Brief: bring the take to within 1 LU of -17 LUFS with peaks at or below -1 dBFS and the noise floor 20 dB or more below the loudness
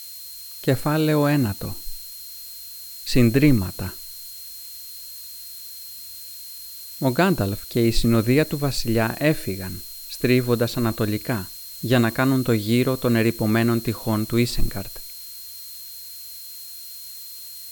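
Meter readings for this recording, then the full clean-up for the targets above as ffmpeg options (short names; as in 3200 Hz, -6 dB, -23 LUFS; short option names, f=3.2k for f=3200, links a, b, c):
steady tone 4200 Hz; tone level -41 dBFS; noise floor -38 dBFS; noise floor target -42 dBFS; loudness -22.0 LUFS; peak -4.5 dBFS; loudness target -17.0 LUFS
-> -af "bandreject=f=4.2k:w=30"
-af "afftdn=nr=6:nf=-38"
-af "volume=5dB,alimiter=limit=-1dB:level=0:latency=1"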